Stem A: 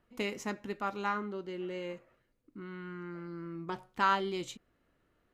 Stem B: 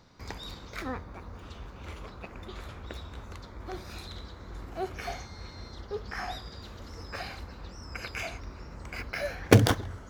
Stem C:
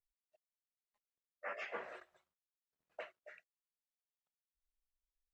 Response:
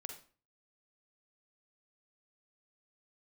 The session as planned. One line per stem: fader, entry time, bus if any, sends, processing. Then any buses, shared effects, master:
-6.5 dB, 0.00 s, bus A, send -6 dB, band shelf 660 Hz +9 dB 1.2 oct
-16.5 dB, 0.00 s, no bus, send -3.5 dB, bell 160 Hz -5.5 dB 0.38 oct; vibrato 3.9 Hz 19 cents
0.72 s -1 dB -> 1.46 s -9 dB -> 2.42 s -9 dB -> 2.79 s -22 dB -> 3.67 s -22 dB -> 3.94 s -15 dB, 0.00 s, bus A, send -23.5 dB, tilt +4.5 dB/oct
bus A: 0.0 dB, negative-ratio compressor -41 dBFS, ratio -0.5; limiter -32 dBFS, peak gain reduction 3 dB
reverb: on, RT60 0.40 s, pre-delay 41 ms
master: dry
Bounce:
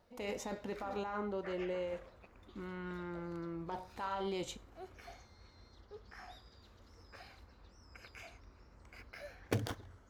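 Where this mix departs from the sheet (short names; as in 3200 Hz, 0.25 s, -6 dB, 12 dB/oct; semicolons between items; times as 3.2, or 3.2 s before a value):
stem B: send off; stem C: missing tilt +4.5 dB/oct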